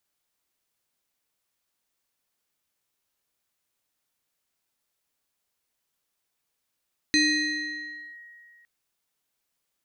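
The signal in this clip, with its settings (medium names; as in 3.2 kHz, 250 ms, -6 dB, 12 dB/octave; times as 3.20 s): FM tone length 1.51 s, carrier 1.89 kHz, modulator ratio 1.16, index 1.5, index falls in 1.03 s linear, decay 2.35 s, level -16.5 dB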